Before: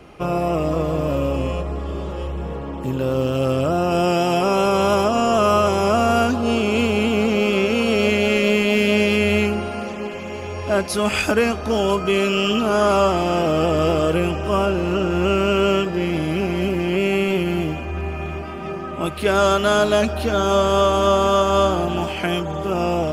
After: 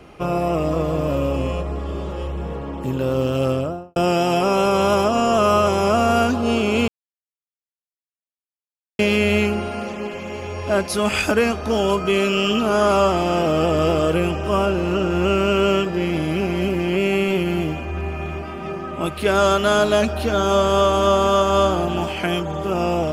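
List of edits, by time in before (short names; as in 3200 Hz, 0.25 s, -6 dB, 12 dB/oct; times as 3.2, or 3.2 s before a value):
3.44–3.96 studio fade out
6.88–8.99 mute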